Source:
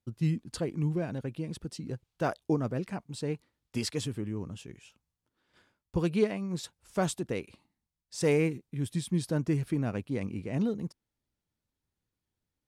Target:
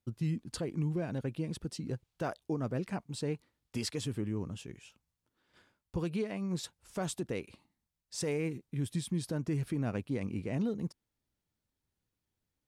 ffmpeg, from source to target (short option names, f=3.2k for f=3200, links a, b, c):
-af "alimiter=level_in=1.5dB:limit=-24dB:level=0:latency=1:release=159,volume=-1.5dB"